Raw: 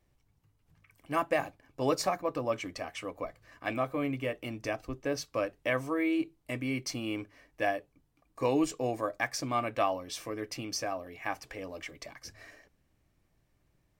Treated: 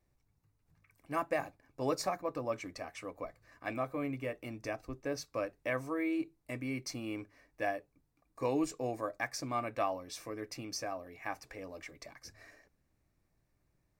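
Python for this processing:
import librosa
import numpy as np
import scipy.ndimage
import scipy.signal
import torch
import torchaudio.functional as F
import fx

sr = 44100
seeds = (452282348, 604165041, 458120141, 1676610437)

y = fx.peak_eq(x, sr, hz=3100.0, db=-10.0, octaves=0.25)
y = y * 10.0 ** (-4.5 / 20.0)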